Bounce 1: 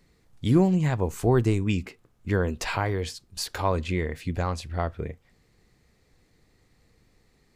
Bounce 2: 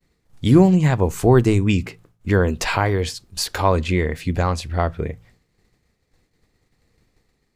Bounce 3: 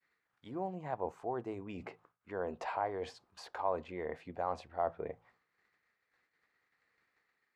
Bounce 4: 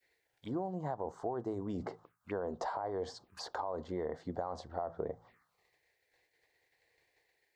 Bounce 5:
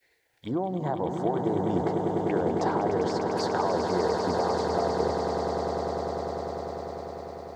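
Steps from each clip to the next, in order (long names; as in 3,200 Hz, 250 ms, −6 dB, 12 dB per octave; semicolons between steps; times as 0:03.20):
downward expander −54 dBFS; hum removal 55.24 Hz, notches 3; level +7.5 dB
reversed playback; downward compressor 6 to 1, threshold −25 dBFS, peak gain reduction 16.5 dB; reversed playback; envelope filter 740–1,600 Hz, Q 2.2, down, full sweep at −27.5 dBFS
brickwall limiter −27.5 dBFS, peak gain reduction 7 dB; downward compressor, threshold −41 dBFS, peak gain reduction 8 dB; phaser swept by the level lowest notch 190 Hz, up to 2,500 Hz, full sweep at −49 dBFS; level +8.5 dB
echo that builds up and dies away 100 ms, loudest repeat 8, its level −8 dB; level +8 dB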